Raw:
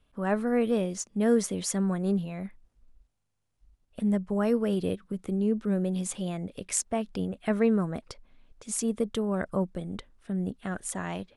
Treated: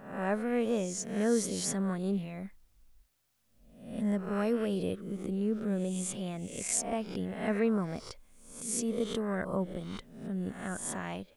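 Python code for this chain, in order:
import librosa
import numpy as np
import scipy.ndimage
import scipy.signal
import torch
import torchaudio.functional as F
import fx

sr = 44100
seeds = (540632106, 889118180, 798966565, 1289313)

y = fx.spec_swells(x, sr, rise_s=0.65)
y = fx.quant_dither(y, sr, seeds[0], bits=12, dither='triangular')
y = F.gain(torch.from_numpy(y), -5.0).numpy()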